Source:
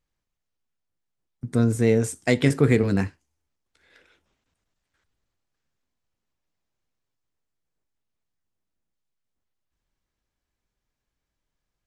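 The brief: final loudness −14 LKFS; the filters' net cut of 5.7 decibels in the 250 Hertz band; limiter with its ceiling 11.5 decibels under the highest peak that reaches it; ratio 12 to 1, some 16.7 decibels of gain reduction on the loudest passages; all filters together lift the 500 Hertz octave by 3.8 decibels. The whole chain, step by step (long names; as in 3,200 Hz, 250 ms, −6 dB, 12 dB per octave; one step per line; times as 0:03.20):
parametric band 250 Hz −9 dB
parametric band 500 Hz +7 dB
downward compressor 12 to 1, threshold −30 dBFS
level +24 dB
brickwall limiter −1.5 dBFS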